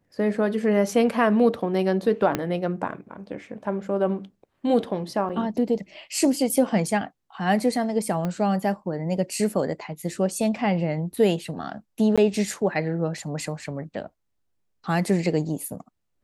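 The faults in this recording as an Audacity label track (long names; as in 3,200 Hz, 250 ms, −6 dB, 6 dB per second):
2.350000	2.350000	click −9 dBFS
5.290000	5.300000	drop-out 6.1 ms
8.250000	8.250000	click −16 dBFS
12.160000	12.180000	drop-out 16 ms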